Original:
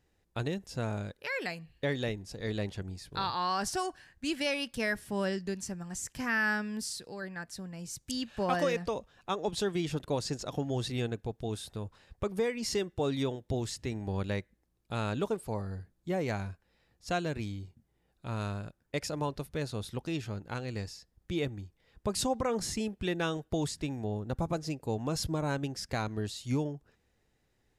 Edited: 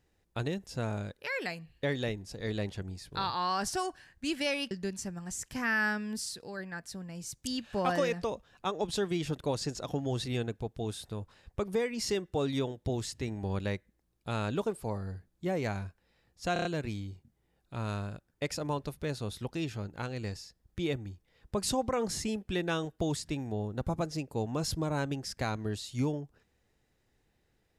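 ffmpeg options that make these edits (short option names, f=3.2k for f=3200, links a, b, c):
-filter_complex "[0:a]asplit=6[a][b][c][d][e][f];[a]atrim=end=4.712[g];[b]atrim=start=5.348:end=17.202[h];[c]atrim=start=17.168:end=17.202[i];[d]atrim=start=17.168:end=17.202[j];[e]atrim=start=17.168:end=17.202[k];[f]atrim=start=17.168[l];[g][h]acrossfade=d=0.004:c1=hsin:c2=hsin[m];[m][i]acrossfade=d=0.004:c1=hsin:c2=hsin[n];[n][j]acrossfade=d=0.004:c1=hsin:c2=hsin[o];[o][k]acrossfade=d=0.004:c1=hsin:c2=hsin[p];[p][l]acrossfade=d=0.004:c1=hsin:c2=hsin"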